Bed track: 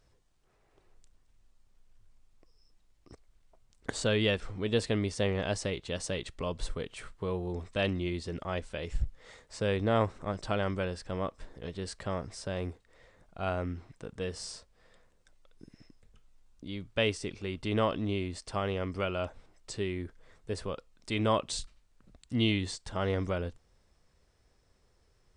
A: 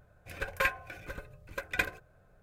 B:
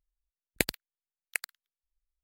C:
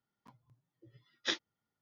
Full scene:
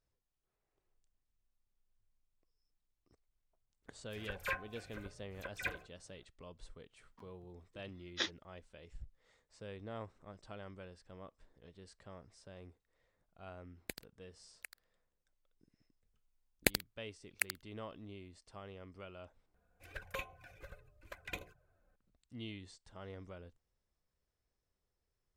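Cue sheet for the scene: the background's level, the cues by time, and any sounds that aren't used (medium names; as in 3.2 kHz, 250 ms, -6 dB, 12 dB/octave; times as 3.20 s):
bed track -18.5 dB
3.83 s: add A -9 dB + phase dispersion lows, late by 49 ms, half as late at 2.6 kHz
6.92 s: add C -2.5 dB
13.29 s: add B -17 dB
16.06 s: add B -2.5 dB
19.54 s: replace with A -8.5 dB + touch-sensitive flanger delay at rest 4.6 ms, full sweep at -29 dBFS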